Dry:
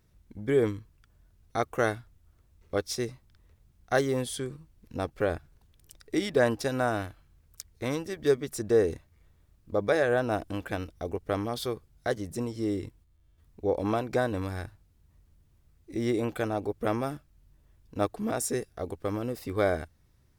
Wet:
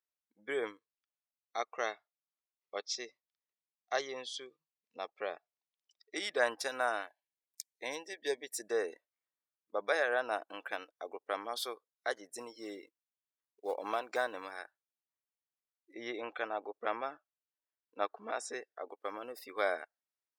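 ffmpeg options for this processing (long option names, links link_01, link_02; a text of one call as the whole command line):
ffmpeg -i in.wav -filter_complex "[0:a]asettb=1/sr,asplit=3[link_01][link_02][link_03];[link_01]atrim=end=0.784[link_04];[link_02]atrim=start=0.78:end=6.16,asetpts=PTS-STARTPTS,afade=type=in:duration=0.004:curve=qsin,afade=type=out:start_time=5.376:duration=0.004:curve=qsin,highpass=120,equalizer=frequency=160:width_type=q:width=4:gain=4,equalizer=frequency=290:width_type=q:width=4:gain=-6,equalizer=frequency=520:width_type=q:width=4:gain=-3,equalizer=frequency=910:width_type=q:width=4:gain=-4,equalizer=frequency=1500:width_type=q:width=4:gain=-10,lowpass=frequency=6400:width=0.5412,lowpass=frequency=6400:width=1.3066[link_05];[link_03]atrim=start=6.156[link_06];[link_04][link_05]acrossfade=duration=0.004:curve1=hsin:curve2=qsin[link_07];[link_07][link_06]acrossfade=duration=0.004:curve1=qsin:curve2=hsin,asplit=3[link_08][link_09][link_10];[link_08]afade=type=out:start_time=7.06:duration=0.02[link_11];[link_09]asuperstop=centerf=1300:order=8:qfactor=2.2,afade=type=in:start_time=7.06:duration=0.02,afade=type=out:start_time=8.65:duration=0.02[link_12];[link_10]afade=type=in:start_time=8.65:duration=0.02[link_13];[link_11][link_12][link_13]amix=inputs=3:normalize=0,asettb=1/sr,asplit=3[link_14][link_15][link_16];[link_14]atrim=end=12.374[link_17];[link_15]atrim=start=12.37:end=14.58,asetpts=PTS-STARTPTS,afade=type=in:duration=0.004:curve=qsin,afade=type=out:start_time=2.206:duration=0.004:curve=qsin,acrusher=bits=6:mode=log:mix=0:aa=0.000001[link_18];[link_16]atrim=start=14.576[link_19];[link_17][link_18]acrossfade=duration=0.004:curve1=hsin:curve2=qsin[link_20];[link_20][link_19]acrossfade=duration=0.004:curve1=qsin:curve2=hsin,asettb=1/sr,asplit=3[link_21][link_22][link_23];[link_21]atrim=end=15.934[link_24];[link_22]atrim=start=15.93:end=18.92,asetpts=PTS-STARTPTS,afade=type=in:duration=0.004:curve=qsin,afade=type=out:start_time=2.986:duration=0.004:curve=qsin,lowpass=4600[link_25];[link_23]atrim=start=18.916[link_26];[link_24][link_25]acrossfade=duration=0.004:curve1=hsin:curve2=qsin[link_27];[link_27][link_26]acrossfade=duration=0.004:curve1=qsin:curve2=hsin,highpass=770,afftdn=noise_reduction=22:noise_floor=-51,volume=-1dB" out.wav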